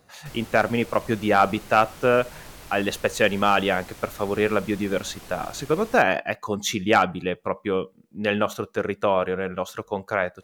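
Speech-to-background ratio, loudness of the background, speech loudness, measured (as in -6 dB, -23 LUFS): 19.5 dB, -43.5 LUFS, -24.0 LUFS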